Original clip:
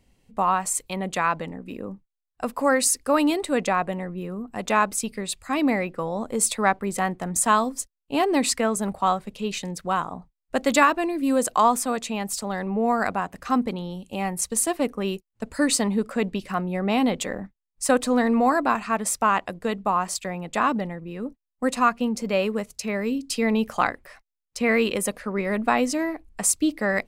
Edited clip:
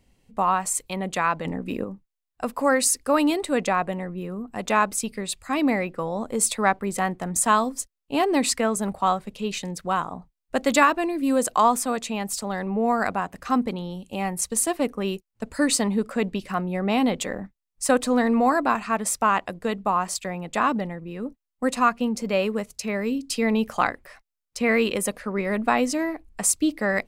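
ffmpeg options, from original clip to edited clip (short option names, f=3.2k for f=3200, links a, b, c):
-filter_complex "[0:a]asplit=3[a][b][c];[a]atrim=end=1.452[d];[b]atrim=start=1.448:end=1.842,asetpts=PTS-STARTPTS,volume=6.5dB[e];[c]atrim=start=1.838[f];[d][e]acrossfade=d=0.004:c1=hsin:c2=hsin[g];[g][f]acrossfade=d=0.004:c1=hsin:c2=hsin"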